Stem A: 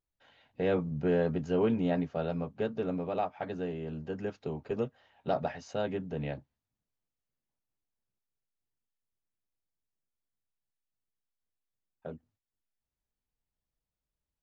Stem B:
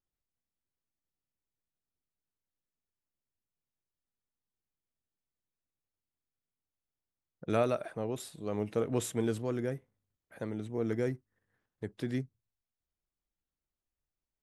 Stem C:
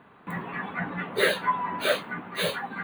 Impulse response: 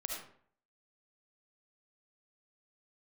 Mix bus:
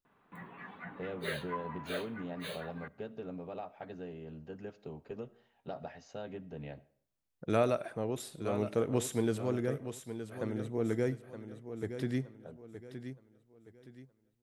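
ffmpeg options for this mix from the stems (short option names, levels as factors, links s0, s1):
-filter_complex "[0:a]acompressor=threshold=0.0355:ratio=6,adelay=400,volume=0.355,asplit=2[s0][s1];[s1]volume=0.141[s2];[1:a]volume=0.944,asplit=3[s3][s4][s5];[s4]volume=0.126[s6];[s5]volume=0.335[s7];[2:a]adelay=50,volume=0.168,asplit=2[s8][s9];[s9]volume=0.0891[s10];[3:a]atrim=start_sample=2205[s11];[s2][s6][s10]amix=inputs=3:normalize=0[s12];[s12][s11]afir=irnorm=-1:irlink=0[s13];[s7]aecho=0:1:919|1838|2757|3676|4595:1|0.34|0.116|0.0393|0.0134[s14];[s0][s3][s8][s13][s14]amix=inputs=5:normalize=0"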